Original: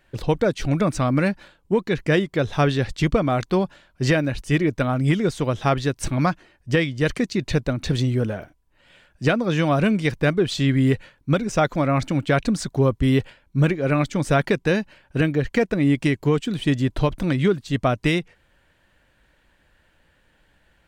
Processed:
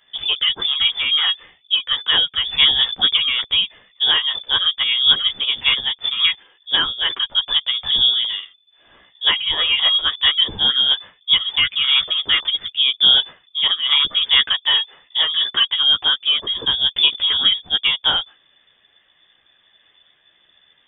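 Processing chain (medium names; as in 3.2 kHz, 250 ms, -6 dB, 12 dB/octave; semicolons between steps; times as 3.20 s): chorus voices 2, 0.88 Hz, delay 13 ms, depth 3 ms; frequency inversion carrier 3.5 kHz; trim +5 dB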